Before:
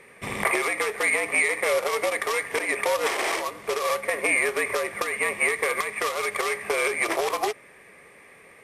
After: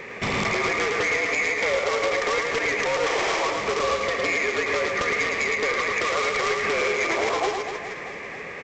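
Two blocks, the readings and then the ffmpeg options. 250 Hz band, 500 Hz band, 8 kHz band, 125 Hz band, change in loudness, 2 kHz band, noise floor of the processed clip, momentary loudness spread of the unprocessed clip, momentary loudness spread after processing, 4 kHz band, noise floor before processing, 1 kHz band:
+4.0 dB, +2.0 dB, -3.0 dB, +8.5 dB, +1.5 dB, +1.5 dB, -36 dBFS, 6 LU, 5 LU, +4.5 dB, -51 dBFS, +2.5 dB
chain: -af "acompressor=threshold=0.0251:ratio=12,aresample=16000,aeval=exprs='0.0891*sin(PI/2*2.82*val(0)/0.0891)':c=same,aresample=44100,aecho=1:1:110|247.5|419.4|634.2|902.8:0.631|0.398|0.251|0.158|0.1"

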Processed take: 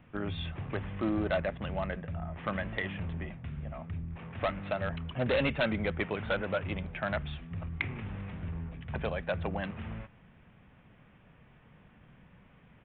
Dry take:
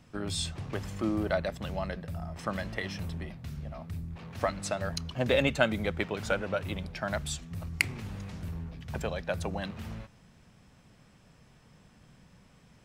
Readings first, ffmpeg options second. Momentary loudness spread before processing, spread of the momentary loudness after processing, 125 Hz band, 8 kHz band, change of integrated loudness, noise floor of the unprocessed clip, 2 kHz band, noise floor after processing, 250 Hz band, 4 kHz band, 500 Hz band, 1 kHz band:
13 LU, 10 LU, -0.5 dB, under -35 dB, -1.5 dB, -60 dBFS, -1.5 dB, -60 dBFS, -0.5 dB, -5.0 dB, -1.5 dB, -1.0 dB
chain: -af "lowpass=f=2600:w=0.5412,lowpass=f=2600:w=1.3066,aresample=8000,asoftclip=type=hard:threshold=0.0596,aresample=44100,aemphasis=mode=production:type=75kf"

